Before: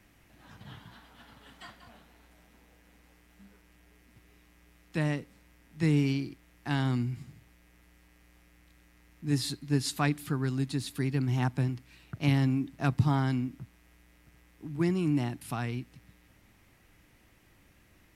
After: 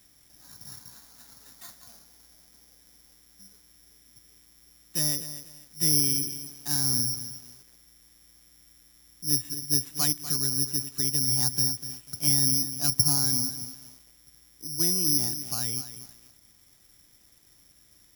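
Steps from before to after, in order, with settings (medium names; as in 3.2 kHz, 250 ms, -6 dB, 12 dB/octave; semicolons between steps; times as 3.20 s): single-diode clipper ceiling -14.5 dBFS; careless resampling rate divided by 8×, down filtered, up zero stuff; bit-crushed delay 245 ms, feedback 35%, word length 5-bit, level -11.5 dB; trim -5.5 dB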